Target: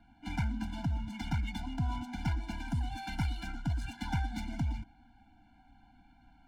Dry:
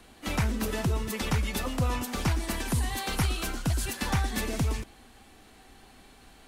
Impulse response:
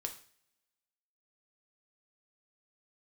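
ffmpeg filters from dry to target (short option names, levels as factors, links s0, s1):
-af "adynamicsmooth=sensitivity=6:basefreq=2200,afftfilt=real='re*eq(mod(floor(b*sr/1024/340),2),0)':imag='im*eq(mod(floor(b*sr/1024/340),2),0)':win_size=1024:overlap=0.75,volume=0.562"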